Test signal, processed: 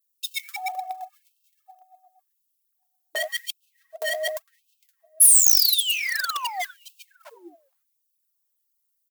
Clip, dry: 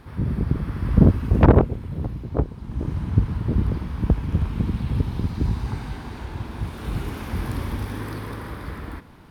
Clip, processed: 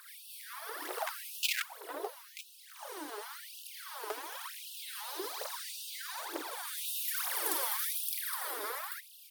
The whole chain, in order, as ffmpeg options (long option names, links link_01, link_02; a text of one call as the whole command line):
ffmpeg -i in.wav -filter_complex "[0:a]acrossover=split=420|1000[link_01][link_02][link_03];[link_01]acompressor=threshold=-29dB:ratio=6[link_04];[link_02]asoftclip=type=tanh:threshold=-17.5dB[link_05];[link_03]equalizer=frequency=2400:width=2.6:gain=-5.5[link_06];[link_04][link_05][link_06]amix=inputs=3:normalize=0,acontrast=53,aphaser=in_gain=1:out_gain=1:delay=5:decay=0.77:speed=1.1:type=triangular,asplit=2[link_07][link_08];[link_08]adelay=458,lowpass=frequency=4400:poles=1,volume=-18.5dB,asplit=2[link_09][link_10];[link_10]adelay=458,lowpass=frequency=4400:poles=1,volume=0.21[link_11];[link_07][link_09][link_11]amix=inputs=3:normalize=0,aeval=exprs='0.251*(abs(mod(val(0)/0.251+3,4)-2)-1)':channel_layout=same,aemphasis=mode=production:type=75fm,afftfilt=real='re*gte(b*sr/1024,290*pow(2600/290,0.5+0.5*sin(2*PI*0.9*pts/sr)))':imag='im*gte(b*sr/1024,290*pow(2600/290,0.5+0.5*sin(2*PI*0.9*pts/sr)))':win_size=1024:overlap=0.75,volume=-10dB" out.wav